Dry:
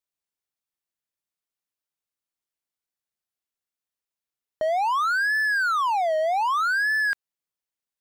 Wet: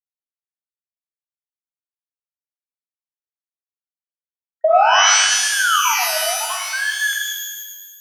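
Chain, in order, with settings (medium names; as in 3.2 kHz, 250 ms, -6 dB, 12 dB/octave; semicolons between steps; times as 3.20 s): random holes in the spectrogram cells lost 33%; gate -38 dBFS, range -22 dB; band-pass sweep 590 Hz -> 2.4 kHz, 4.55–6.59 s; in parallel at -1 dB: compression, threshold -34 dBFS, peak gain reduction 11 dB; on the sum: dynamic bell 610 Hz, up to +8 dB, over -38 dBFS, Q 1.1; on a send: feedback echo behind a high-pass 148 ms, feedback 45%, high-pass 3 kHz, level -3 dB; on the sum: pitch-shifted reverb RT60 1.2 s, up +12 st, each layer -2 dB, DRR 1 dB; trim +2 dB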